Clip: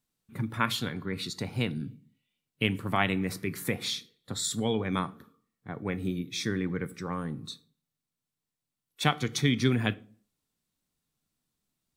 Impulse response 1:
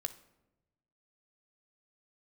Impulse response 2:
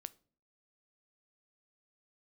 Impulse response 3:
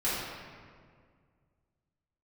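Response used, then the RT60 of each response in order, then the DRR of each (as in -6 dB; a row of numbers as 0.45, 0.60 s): 2; 1.0, 0.45, 1.9 s; 8.0, 15.0, -11.0 dB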